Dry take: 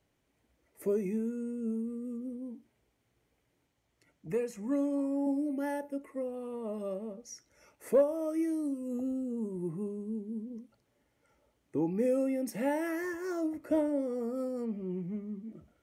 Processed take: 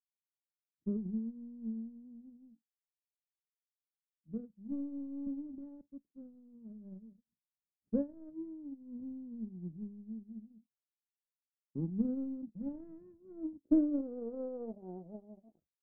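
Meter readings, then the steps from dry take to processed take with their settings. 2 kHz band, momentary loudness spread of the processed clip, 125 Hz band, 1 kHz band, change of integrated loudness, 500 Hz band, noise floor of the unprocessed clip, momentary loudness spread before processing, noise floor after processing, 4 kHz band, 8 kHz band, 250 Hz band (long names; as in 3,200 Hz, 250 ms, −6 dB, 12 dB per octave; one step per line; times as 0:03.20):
below −30 dB, 19 LU, −3.0 dB, below −15 dB, −5.5 dB, −13.5 dB, −77 dBFS, 13 LU, below −85 dBFS, can't be measured, below −25 dB, −4.5 dB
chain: phaser swept by the level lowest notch 340 Hz, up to 4,800 Hz, full sweep at −30 dBFS
power curve on the samples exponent 2
low-pass filter sweep 200 Hz → 630 Hz, 0:13.14–0:14.85
level +4 dB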